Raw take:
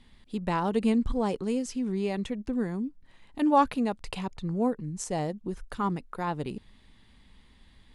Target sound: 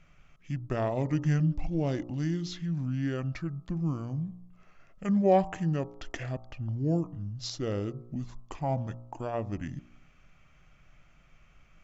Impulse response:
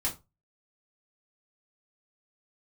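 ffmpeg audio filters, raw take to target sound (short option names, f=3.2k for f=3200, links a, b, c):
-af "bandreject=f=88.29:t=h:w=4,bandreject=f=176.58:t=h:w=4,bandreject=f=264.87:t=h:w=4,bandreject=f=353.16:t=h:w=4,bandreject=f=441.45:t=h:w=4,bandreject=f=529.74:t=h:w=4,bandreject=f=618.03:t=h:w=4,bandreject=f=706.32:t=h:w=4,bandreject=f=794.61:t=h:w=4,bandreject=f=882.9:t=h:w=4,bandreject=f=971.19:t=h:w=4,bandreject=f=1.05948k:t=h:w=4,bandreject=f=1.14777k:t=h:w=4,bandreject=f=1.23606k:t=h:w=4,bandreject=f=1.32435k:t=h:w=4,bandreject=f=1.41264k:t=h:w=4,bandreject=f=1.50093k:t=h:w=4,bandreject=f=1.58922k:t=h:w=4,bandreject=f=1.67751k:t=h:w=4,bandreject=f=1.7658k:t=h:w=4,bandreject=f=1.85409k:t=h:w=4,bandreject=f=1.94238k:t=h:w=4,asetrate=29635,aresample=44100,volume=-1.5dB"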